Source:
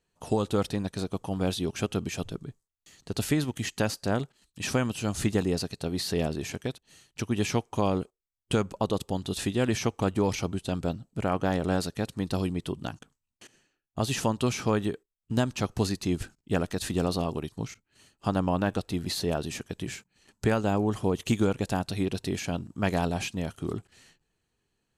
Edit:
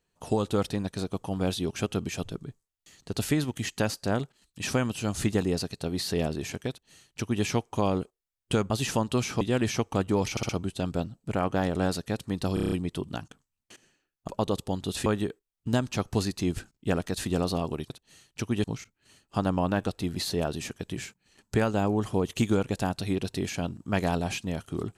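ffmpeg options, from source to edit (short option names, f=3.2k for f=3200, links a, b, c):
-filter_complex "[0:a]asplit=16[a][b][c][d][e][f][g][h][i][j][k][l][m][n][o][p];[a]atrim=end=8.702[q];[b]atrim=start=13.988:end=14.702[r];[c]atrim=start=9.478:end=10.442[s];[d]atrim=start=10.378:end=10.442[t];[e]atrim=start=10.378:end=10.442[u];[f]atrim=start=10.378:end=12.462[v];[g]atrim=start=12.428:end=12.462[w];[h]atrim=start=12.428:end=12.462[x];[i]atrim=start=12.428:end=12.462[y];[j]atrim=start=12.428:end=12.462[z];[k]atrim=start=12.428:end=12.462[aa];[l]atrim=start=12.428:end=13.992[ab];[m]atrim=start=8.698:end=9.482[ac];[n]atrim=start=14.698:end=17.542[ad];[o]atrim=start=6.698:end=7.442[ae];[p]atrim=start=17.538[af];[q][r]acrossfade=d=0.004:c1=hsin:c2=hsin[ag];[ag][s]acrossfade=d=0.004:c1=hsin:c2=hsin[ah];[ah][t]acrossfade=d=0.004:c1=hsin:c2=hsin[ai];[ai][u]acrossfade=d=0.004:c1=hsin:c2=hsin[aj];[aj][v]acrossfade=d=0.004:c1=hsin:c2=hsin[ak];[ak][w]acrossfade=d=0.004:c1=hsin:c2=hsin[al];[al][x]acrossfade=d=0.004:c1=hsin:c2=hsin[am];[am][y]acrossfade=d=0.004:c1=hsin:c2=hsin[an];[an][z]acrossfade=d=0.004:c1=hsin:c2=hsin[ao];[ao][aa]acrossfade=d=0.004:c1=hsin:c2=hsin[ap];[ap][ab]acrossfade=d=0.004:c1=hsin:c2=hsin[aq];[aq][ac]acrossfade=d=0.004:c1=hsin:c2=hsin[ar];[ar][ad]acrossfade=d=0.004:c1=hsin:c2=hsin[as];[as][ae]acrossfade=d=0.004:c1=hsin:c2=hsin[at];[at][af]acrossfade=d=0.004:c1=hsin:c2=hsin"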